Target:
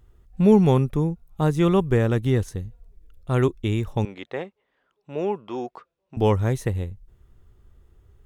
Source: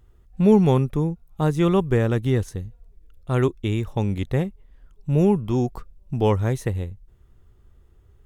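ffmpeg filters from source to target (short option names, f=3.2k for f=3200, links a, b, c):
-filter_complex "[0:a]asettb=1/sr,asplit=3[a][b][c];[a]atrim=end=4.054[d];[b]atrim=start=4.05:end=6.17,asetpts=PTS-STARTPTS,afade=t=in:d=0.004:c=qsin,afade=t=out:st=2.116:d=0.004:c=qsin,highpass=470,lowpass=3.7k[e];[c]atrim=start=6.166[f];[d][e]acrossfade=d=0.004:c1=hsin:c2=qsin[g];[g][f]acrossfade=d=0.004:c1=qsin:c2=hsin"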